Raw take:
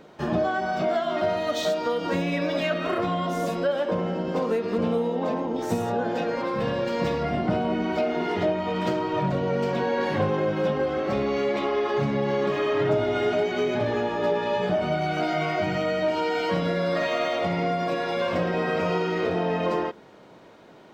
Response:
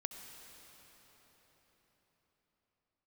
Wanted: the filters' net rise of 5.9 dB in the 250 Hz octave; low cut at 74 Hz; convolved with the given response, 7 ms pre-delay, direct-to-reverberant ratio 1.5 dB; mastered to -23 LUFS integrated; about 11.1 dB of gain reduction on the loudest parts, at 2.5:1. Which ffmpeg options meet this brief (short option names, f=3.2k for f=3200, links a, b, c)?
-filter_complex "[0:a]highpass=74,equalizer=f=250:t=o:g=8,acompressor=threshold=-33dB:ratio=2.5,asplit=2[a][b];[1:a]atrim=start_sample=2205,adelay=7[c];[b][c]afir=irnorm=-1:irlink=0,volume=0dB[d];[a][d]amix=inputs=2:normalize=0,volume=6.5dB"